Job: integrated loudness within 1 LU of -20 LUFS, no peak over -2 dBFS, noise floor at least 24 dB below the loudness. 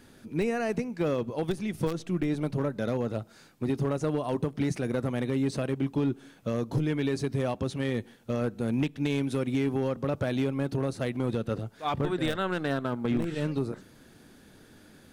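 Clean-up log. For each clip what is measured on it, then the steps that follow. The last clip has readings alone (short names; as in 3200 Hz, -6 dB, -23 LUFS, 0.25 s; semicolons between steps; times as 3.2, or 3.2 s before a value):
clipped 1.1%; flat tops at -20.0 dBFS; loudness -30.5 LUFS; peak -20.0 dBFS; loudness target -20.0 LUFS
-> clip repair -20 dBFS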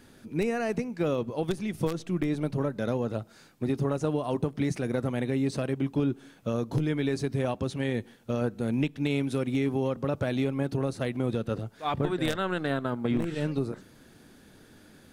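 clipped 0.0%; loudness -30.0 LUFS; peak -11.0 dBFS; loudness target -20.0 LUFS
-> gain +10 dB; limiter -2 dBFS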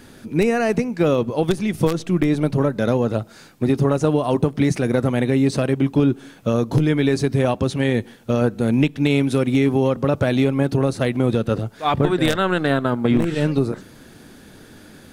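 loudness -20.0 LUFS; peak -2.0 dBFS; noise floor -45 dBFS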